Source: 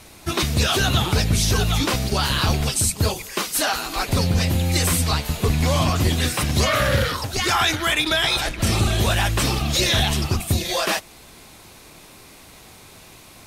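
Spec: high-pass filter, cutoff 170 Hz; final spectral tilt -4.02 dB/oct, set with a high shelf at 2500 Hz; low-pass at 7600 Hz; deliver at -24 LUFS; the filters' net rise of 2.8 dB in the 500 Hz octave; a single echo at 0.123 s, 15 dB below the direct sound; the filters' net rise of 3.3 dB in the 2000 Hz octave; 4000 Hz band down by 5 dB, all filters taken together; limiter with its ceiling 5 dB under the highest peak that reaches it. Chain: HPF 170 Hz; LPF 7600 Hz; bell 500 Hz +3.5 dB; bell 2000 Hz +7.5 dB; high shelf 2500 Hz -5 dB; bell 4000 Hz -4.5 dB; limiter -12 dBFS; echo 0.123 s -15 dB; gain -1 dB

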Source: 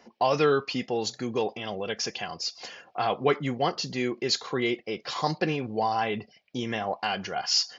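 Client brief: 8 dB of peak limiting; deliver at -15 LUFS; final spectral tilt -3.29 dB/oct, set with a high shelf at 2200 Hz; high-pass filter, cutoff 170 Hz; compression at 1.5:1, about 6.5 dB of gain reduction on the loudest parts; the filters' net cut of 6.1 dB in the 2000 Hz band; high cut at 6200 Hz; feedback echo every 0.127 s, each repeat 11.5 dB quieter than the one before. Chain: HPF 170 Hz; LPF 6200 Hz; bell 2000 Hz -4.5 dB; high shelf 2200 Hz -6 dB; compressor 1.5:1, threshold -37 dBFS; limiter -25 dBFS; feedback echo 0.127 s, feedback 27%, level -11.5 dB; gain +21.5 dB

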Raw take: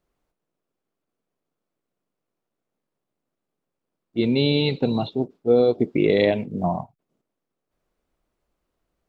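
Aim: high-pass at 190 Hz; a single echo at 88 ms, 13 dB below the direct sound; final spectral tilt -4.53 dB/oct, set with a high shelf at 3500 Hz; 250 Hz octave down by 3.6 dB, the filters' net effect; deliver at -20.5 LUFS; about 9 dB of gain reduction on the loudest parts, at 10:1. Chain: HPF 190 Hz; bell 250 Hz -3 dB; high shelf 3500 Hz -3.5 dB; compressor 10:1, threshold -23 dBFS; echo 88 ms -13 dB; gain +9 dB

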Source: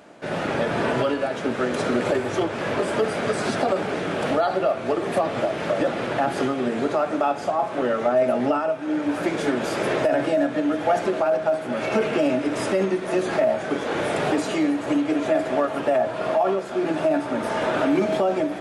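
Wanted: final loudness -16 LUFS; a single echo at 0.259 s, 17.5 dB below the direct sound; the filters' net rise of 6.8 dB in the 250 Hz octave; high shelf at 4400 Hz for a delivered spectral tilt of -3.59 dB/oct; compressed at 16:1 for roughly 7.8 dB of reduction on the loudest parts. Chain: bell 250 Hz +8.5 dB; high shelf 4400 Hz -3.5 dB; compressor 16:1, threshold -19 dBFS; echo 0.259 s -17.5 dB; gain +8 dB

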